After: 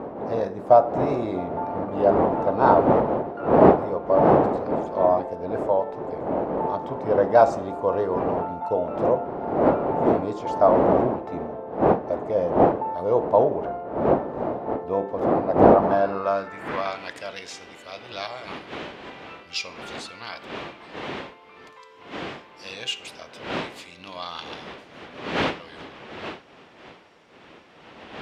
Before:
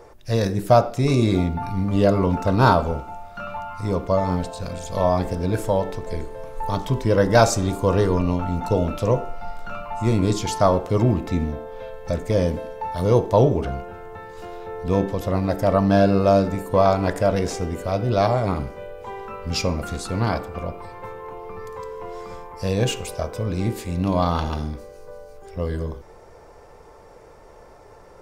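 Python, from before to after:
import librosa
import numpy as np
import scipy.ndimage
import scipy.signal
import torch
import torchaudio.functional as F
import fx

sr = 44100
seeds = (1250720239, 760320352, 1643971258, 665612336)

y = fx.dmg_wind(x, sr, seeds[0], corner_hz=330.0, level_db=-16.0)
y = fx.filter_sweep_bandpass(y, sr, from_hz=710.0, to_hz=3100.0, start_s=15.75, end_s=17.1, q=1.6)
y = F.gain(torch.from_numpy(y), 2.0).numpy()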